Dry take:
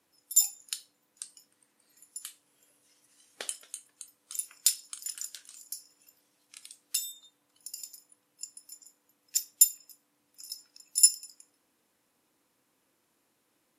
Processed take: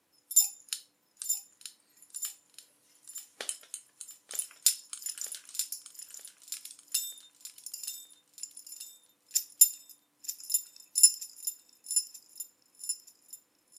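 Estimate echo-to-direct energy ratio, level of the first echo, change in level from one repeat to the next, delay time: -7.5 dB, -22.0 dB, no steady repeat, 0.885 s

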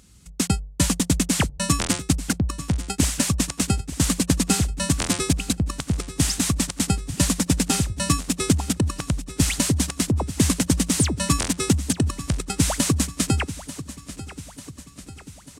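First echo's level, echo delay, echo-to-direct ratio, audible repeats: -15.0 dB, 0.893 s, -13.5 dB, 5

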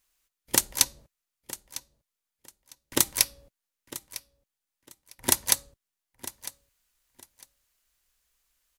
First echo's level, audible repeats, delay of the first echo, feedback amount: -16.0 dB, 2, 0.953 s, 21%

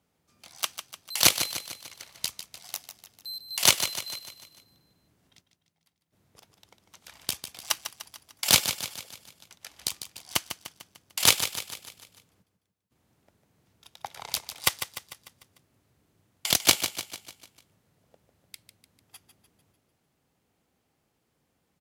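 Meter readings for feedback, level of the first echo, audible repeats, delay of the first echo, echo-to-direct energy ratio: 51%, -10.0 dB, 5, 0.149 s, -8.5 dB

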